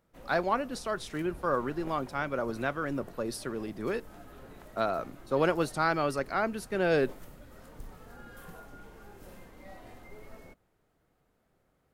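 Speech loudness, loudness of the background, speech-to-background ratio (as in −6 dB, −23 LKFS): −31.5 LKFS, −51.0 LKFS, 19.5 dB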